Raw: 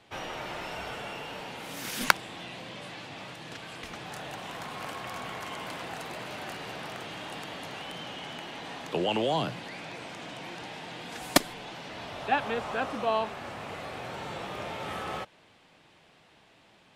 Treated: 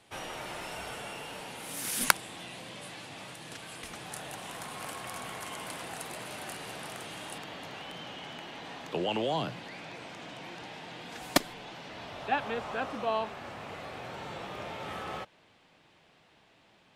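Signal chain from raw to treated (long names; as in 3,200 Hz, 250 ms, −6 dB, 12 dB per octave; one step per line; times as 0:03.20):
parametric band 10,000 Hz +13.5 dB 0.87 octaves, from 0:07.38 −2.5 dB
level −3 dB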